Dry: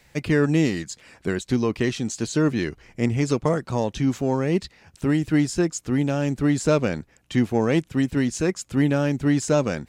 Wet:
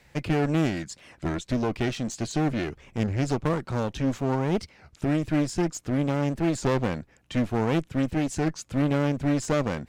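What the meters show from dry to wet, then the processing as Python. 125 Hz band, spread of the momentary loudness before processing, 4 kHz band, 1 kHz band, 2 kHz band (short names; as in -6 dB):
-2.5 dB, 7 LU, -3.5 dB, 0.0 dB, -4.5 dB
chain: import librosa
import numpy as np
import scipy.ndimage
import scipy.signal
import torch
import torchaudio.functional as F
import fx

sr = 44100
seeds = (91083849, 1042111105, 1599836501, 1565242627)

y = fx.high_shelf(x, sr, hz=4000.0, db=-6.5)
y = fx.clip_asym(y, sr, top_db=-30.5, bottom_db=-13.5)
y = fx.record_warp(y, sr, rpm=33.33, depth_cents=250.0)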